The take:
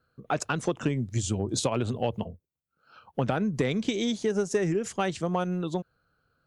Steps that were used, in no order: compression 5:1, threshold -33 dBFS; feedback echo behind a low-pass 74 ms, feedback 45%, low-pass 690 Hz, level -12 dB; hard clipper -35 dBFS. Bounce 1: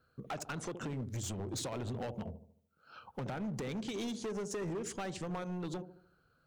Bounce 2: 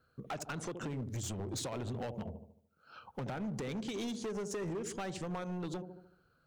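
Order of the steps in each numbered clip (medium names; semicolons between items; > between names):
compression > feedback echo behind a low-pass > hard clipper; feedback echo behind a low-pass > compression > hard clipper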